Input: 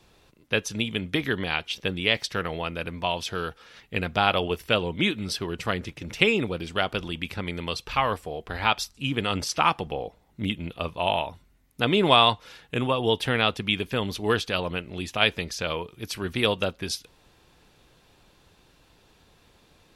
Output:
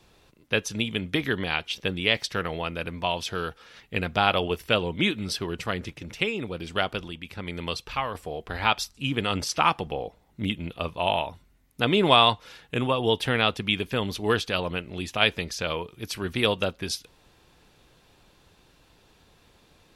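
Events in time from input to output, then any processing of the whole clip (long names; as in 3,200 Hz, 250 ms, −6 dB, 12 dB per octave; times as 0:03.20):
0:05.64–0:08.15: shaped tremolo triangle 1.1 Hz, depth 60%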